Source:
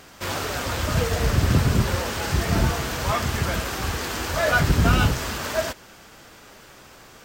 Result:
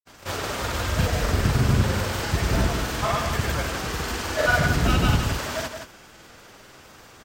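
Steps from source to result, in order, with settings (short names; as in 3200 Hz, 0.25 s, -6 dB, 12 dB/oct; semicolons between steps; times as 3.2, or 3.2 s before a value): grains, pitch spread up and down by 0 st; echo 0.171 s -7.5 dB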